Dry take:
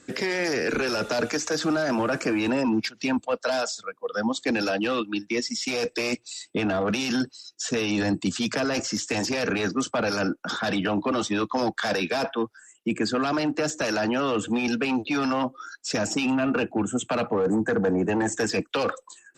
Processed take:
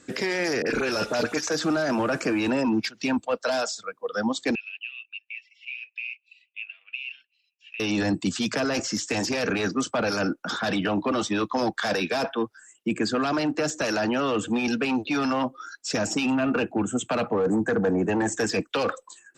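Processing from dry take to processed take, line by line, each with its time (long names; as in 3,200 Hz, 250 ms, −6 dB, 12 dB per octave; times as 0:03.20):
0:00.62–0:01.47: all-pass dispersion highs, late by 43 ms, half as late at 1,300 Hz
0:04.55–0:07.80: flat-topped band-pass 2,600 Hz, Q 5.2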